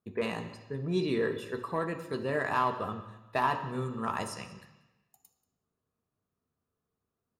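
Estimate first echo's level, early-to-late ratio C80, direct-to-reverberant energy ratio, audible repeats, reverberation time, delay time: -21.0 dB, 12.0 dB, 4.5 dB, 1, 1.0 s, 0.185 s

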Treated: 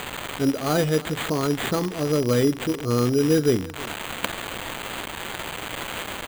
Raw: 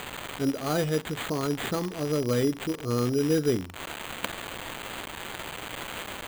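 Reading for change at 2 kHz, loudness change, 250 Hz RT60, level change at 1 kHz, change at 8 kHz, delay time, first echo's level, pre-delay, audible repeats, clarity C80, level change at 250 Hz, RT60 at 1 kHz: +5.0 dB, +5.0 dB, none, +5.0 dB, +5.0 dB, 0.323 s, -19.5 dB, none, 1, none, +5.0 dB, none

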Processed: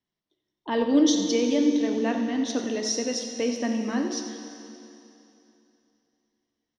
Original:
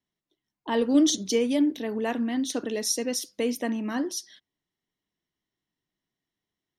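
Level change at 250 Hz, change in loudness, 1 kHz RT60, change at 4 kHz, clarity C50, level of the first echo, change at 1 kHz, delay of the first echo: +2.0 dB, +1.5 dB, 2.9 s, +1.0 dB, 5.0 dB, -12.5 dB, +1.5 dB, 89 ms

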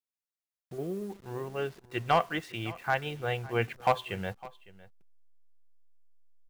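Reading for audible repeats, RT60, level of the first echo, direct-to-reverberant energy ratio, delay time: 1, none, -20.0 dB, none, 0.557 s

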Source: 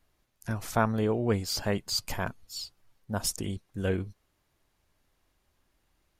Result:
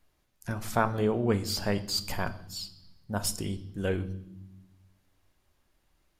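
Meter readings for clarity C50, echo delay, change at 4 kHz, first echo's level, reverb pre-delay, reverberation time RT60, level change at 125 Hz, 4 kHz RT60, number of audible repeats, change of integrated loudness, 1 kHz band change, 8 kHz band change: 15.5 dB, none, 0.0 dB, none, 5 ms, 0.85 s, -0.5 dB, 0.90 s, none, 0.0 dB, +1.0 dB, -1.0 dB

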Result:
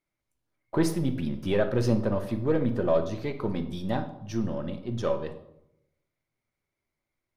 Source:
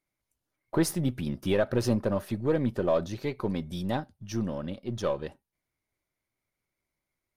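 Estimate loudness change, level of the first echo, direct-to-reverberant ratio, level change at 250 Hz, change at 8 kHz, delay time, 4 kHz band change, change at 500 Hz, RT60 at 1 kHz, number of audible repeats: +1.5 dB, none, 7.5 dB, +1.5 dB, -4.5 dB, none, -1.5 dB, +1.5 dB, 0.75 s, none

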